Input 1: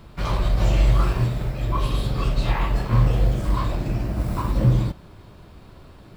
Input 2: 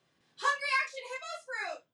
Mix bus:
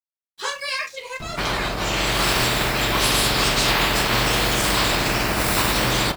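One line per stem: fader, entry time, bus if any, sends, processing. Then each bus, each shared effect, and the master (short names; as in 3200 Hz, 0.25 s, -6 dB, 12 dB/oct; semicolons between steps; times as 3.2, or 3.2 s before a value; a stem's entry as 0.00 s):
0.0 dB, 1.20 s, no send, notch 530 Hz, Q 12; auto duck -16 dB, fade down 1.95 s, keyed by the second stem
-11.5 dB, 0.00 s, no send, crossover distortion -55 dBFS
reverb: off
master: spectral compressor 4:1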